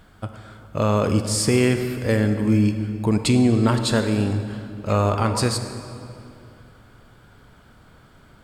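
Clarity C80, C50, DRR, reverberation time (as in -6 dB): 9.0 dB, 8.0 dB, 7.5 dB, 2.7 s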